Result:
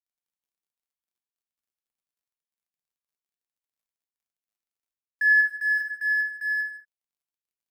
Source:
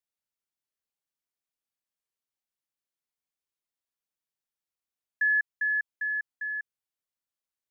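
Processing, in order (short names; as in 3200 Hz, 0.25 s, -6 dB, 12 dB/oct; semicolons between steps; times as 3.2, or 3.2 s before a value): G.711 law mismatch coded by mu; 5.33–5.77 HPF 1500 Hz -> 1500 Hz 12 dB/oct; non-linear reverb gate 0.25 s falling, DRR 1 dB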